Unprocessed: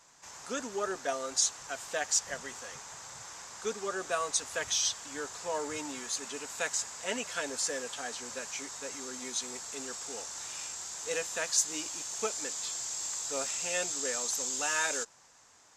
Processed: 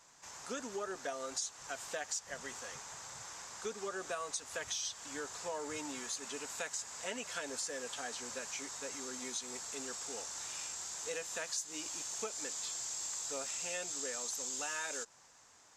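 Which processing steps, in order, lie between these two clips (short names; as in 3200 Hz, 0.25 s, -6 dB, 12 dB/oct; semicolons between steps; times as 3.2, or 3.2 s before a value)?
compressor 4:1, threshold -35 dBFS, peak gain reduction 11.5 dB; gain -2 dB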